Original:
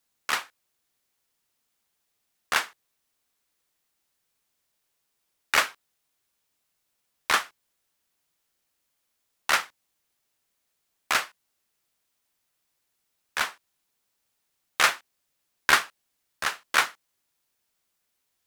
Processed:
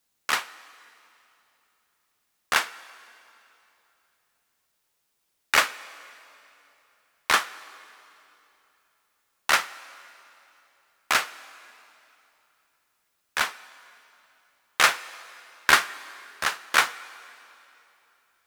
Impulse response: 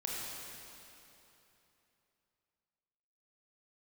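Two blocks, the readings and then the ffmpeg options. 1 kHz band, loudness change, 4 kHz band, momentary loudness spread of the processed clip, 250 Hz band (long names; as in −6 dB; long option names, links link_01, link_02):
+2.0 dB, +1.5 dB, +2.0 dB, 21 LU, +2.0 dB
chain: -filter_complex "[0:a]asplit=2[link_01][link_02];[link_02]highpass=frequency=240:width=0.5412,highpass=frequency=240:width=1.3066[link_03];[1:a]atrim=start_sample=2205,adelay=54[link_04];[link_03][link_04]afir=irnorm=-1:irlink=0,volume=-19.5dB[link_05];[link_01][link_05]amix=inputs=2:normalize=0,volume=2dB"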